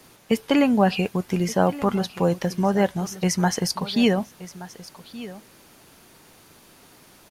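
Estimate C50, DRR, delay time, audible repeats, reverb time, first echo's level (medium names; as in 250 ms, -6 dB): no reverb, no reverb, 1175 ms, 1, no reverb, -17.0 dB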